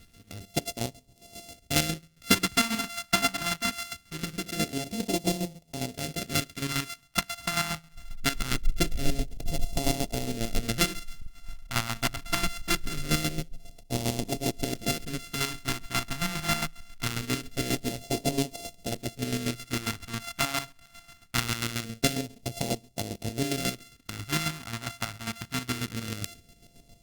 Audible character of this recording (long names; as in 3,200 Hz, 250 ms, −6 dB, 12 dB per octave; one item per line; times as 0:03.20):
a buzz of ramps at a fixed pitch in blocks of 64 samples
chopped level 7.4 Hz, depth 60%, duty 35%
phaser sweep stages 2, 0.23 Hz, lowest notch 450–1,300 Hz
Opus